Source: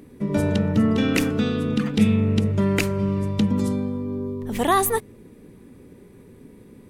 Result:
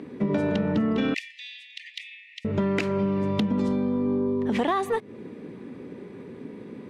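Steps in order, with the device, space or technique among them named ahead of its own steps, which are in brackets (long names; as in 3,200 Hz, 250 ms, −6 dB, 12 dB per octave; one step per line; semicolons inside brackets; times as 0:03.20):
AM radio (band-pass filter 180–3,600 Hz; downward compressor 10 to 1, threshold −28 dBFS, peak gain reduction 14 dB; soft clipping −22 dBFS, distortion −23 dB)
0:01.14–0:02.45: Chebyshev high-pass filter 1,800 Hz, order 10
level +8 dB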